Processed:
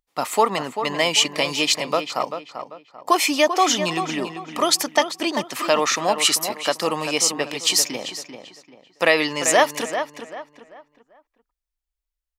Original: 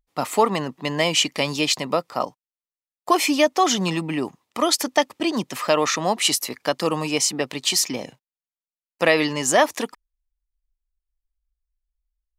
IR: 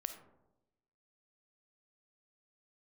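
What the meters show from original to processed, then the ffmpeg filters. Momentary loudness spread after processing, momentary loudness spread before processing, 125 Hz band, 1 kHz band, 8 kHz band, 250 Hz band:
14 LU, 9 LU, -5.5 dB, +1.5 dB, +2.0 dB, -2.5 dB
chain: -filter_complex "[0:a]lowshelf=f=270:g=-11,asplit=2[s0][s1];[s1]adelay=391,lowpass=f=3100:p=1,volume=0.376,asplit=2[s2][s3];[s3]adelay=391,lowpass=f=3100:p=1,volume=0.34,asplit=2[s4][s5];[s5]adelay=391,lowpass=f=3100:p=1,volume=0.34,asplit=2[s6][s7];[s7]adelay=391,lowpass=f=3100:p=1,volume=0.34[s8];[s0][s2][s4][s6][s8]amix=inputs=5:normalize=0,volume=1.26"

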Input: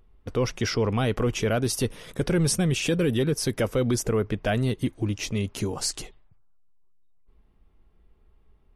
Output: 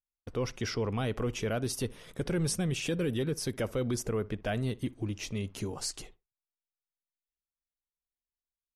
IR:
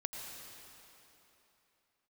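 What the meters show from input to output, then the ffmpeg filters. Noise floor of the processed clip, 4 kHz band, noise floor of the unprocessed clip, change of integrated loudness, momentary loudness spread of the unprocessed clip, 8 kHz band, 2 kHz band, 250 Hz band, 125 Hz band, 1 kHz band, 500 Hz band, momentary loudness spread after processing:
under -85 dBFS, -7.5 dB, -60 dBFS, -7.5 dB, 6 LU, -7.5 dB, -7.5 dB, -7.5 dB, -7.5 dB, -7.5 dB, -7.5 dB, 6 LU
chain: -filter_complex "[0:a]agate=range=0.0126:threshold=0.00562:ratio=16:detection=peak,asplit=2[s0][s1];[s1]adelay=61,lowpass=f=1700:p=1,volume=0.0944,asplit=2[s2][s3];[s3]adelay=61,lowpass=f=1700:p=1,volume=0.24[s4];[s0][s2][s4]amix=inputs=3:normalize=0,volume=0.422"

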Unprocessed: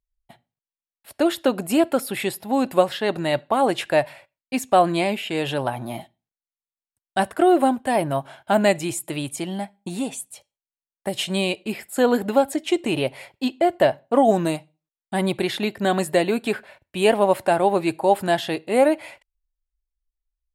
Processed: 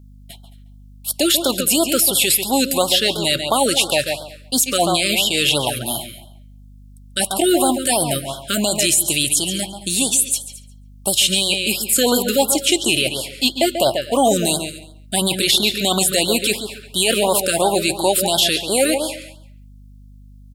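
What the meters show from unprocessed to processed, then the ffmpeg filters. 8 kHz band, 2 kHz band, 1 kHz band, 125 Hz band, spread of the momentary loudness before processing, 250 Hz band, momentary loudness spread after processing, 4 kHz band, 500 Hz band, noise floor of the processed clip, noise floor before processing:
+18.5 dB, +5.0 dB, -0.5 dB, +2.0 dB, 11 LU, +1.0 dB, 9 LU, +14.5 dB, +0.5 dB, -43 dBFS, under -85 dBFS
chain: -filter_complex "[0:a]aexciter=amount=7.7:drive=4:freq=2700,asplit=2[s0][s1];[s1]adelay=139,lowpass=f=3700:p=1,volume=0.355,asplit=2[s2][s3];[s3]adelay=139,lowpass=f=3700:p=1,volume=0.24,asplit=2[s4][s5];[s5]adelay=139,lowpass=f=3700:p=1,volume=0.24[s6];[s2][s4][s6]amix=inputs=3:normalize=0[s7];[s0][s7]amix=inputs=2:normalize=0,alimiter=limit=0.398:level=0:latency=1:release=12,equalizer=f=1500:t=o:w=1.7:g=3,aeval=exprs='val(0)+0.00631*(sin(2*PI*50*n/s)+sin(2*PI*2*50*n/s)/2+sin(2*PI*3*50*n/s)/3+sin(2*PI*4*50*n/s)/4+sin(2*PI*5*50*n/s)/5)':c=same,asplit=2[s8][s9];[s9]aecho=0:1:218:0.112[s10];[s8][s10]amix=inputs=2:normalize=0,afftfilt=real='re*(1-between(b*sr/1024,820*pow(2200/820,0.5+0.5*sin(2*PI*2.9*pts/sr))/1.41,820*pow(2200/820,0.5+0.5*sin(2*PI*2.9*pts/sr))*1.41))':imag='im*(1-between(b*sr/1024,820*pow(2200/820,0.5+0.5*sin(2*PI*2.9*pts/sr))/1.41,820*pow(2200/820,0.5+0.5*sin(2*PI*2.9*pts/sr))*1.41))':win_size=1024:overlap=0.75,volume=1.26"

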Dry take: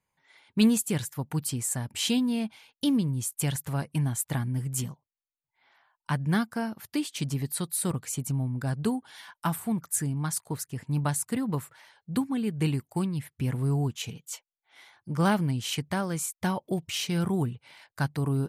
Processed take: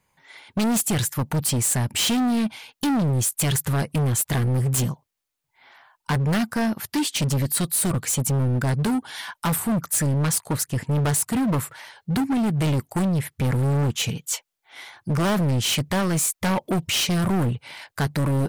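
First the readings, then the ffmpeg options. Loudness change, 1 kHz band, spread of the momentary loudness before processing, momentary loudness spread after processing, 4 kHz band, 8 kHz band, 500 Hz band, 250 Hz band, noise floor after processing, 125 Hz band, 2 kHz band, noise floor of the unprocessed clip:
+6.5 dB, +6.0 dB, 9 LU, 7 LU, +8.0 dB, +8.0 dB, +6.5 dB, +4.5 dB, -79 dBFS, +7.0 dB, +7.0 dB, under -85 dBFS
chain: -af "apsyclip=11.2,volume=3.55,asoftclip=hard,volume=0.282,volume=0.376"

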